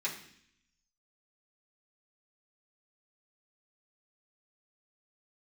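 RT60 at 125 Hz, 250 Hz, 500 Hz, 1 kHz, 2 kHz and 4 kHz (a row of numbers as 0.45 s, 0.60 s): 0.95 s, 0.90 s, 0.65 s, 0.60 s, 0.80 s, 0.80 s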